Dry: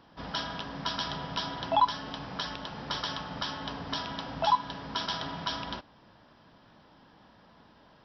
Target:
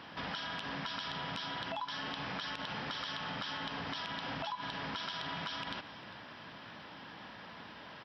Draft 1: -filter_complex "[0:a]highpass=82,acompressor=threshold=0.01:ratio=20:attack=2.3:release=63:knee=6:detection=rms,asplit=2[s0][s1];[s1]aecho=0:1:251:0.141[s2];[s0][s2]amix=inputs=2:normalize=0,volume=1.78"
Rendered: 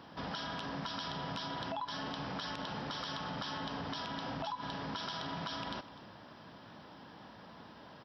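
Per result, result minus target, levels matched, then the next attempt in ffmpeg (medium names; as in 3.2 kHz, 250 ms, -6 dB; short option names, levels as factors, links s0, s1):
echo 149 ms early; 2 kHz band -4.5 dB
-filter_complex "[0:a]highpass=82,acompressor=threshold=0.01:ratio=20:attack=2.3:release=63:knee=6:detection=rms,asplit=2[s0][s1];[s1]aecho=0:1:400:0.141[s2];[s0][s2]amix=inputs=2:normalize=0,volume=1.78"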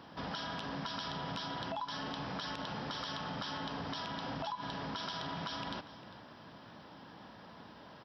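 2 kHz band -4.5 dB
-filter_complex "[0:a]highpass=82,equalizer=f=2300:t=o:w=1.6:g=10.5,acompressor=threshold=0.01:ratio=20:attack=2.3:release=63:knee=6:detection=rms,asplit=2[s0][s1];[s1]aecho=0:1:400:0.141[s2];[s0][s2]amix=inputs=2:normalize=0,volume=1.78"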